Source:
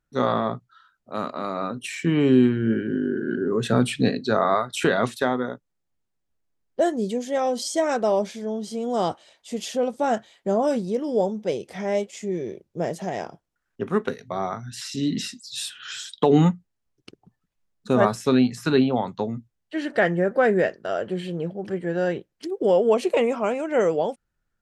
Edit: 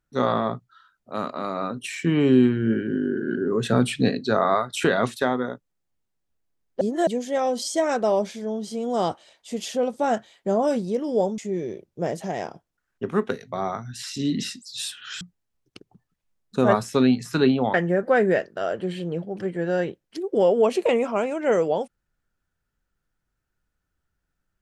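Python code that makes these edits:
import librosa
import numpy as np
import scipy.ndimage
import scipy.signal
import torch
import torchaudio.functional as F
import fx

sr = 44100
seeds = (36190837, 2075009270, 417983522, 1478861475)

y = fx.edit(x, sr, fx.reverse_span(start_s=6.81, length_s=0.26),
    fx.cut(start_s=11.38, length_s=0.78),
    fx.cut(start_s=15.99, length_s=0.54),
    fx.cut(start_s=19.06, length_s=0.96), tone=tone)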